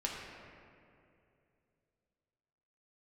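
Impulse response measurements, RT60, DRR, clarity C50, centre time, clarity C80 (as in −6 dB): 2.6 s, −3.0 dB, 1.0 dB, 102 ms, 2.0 dB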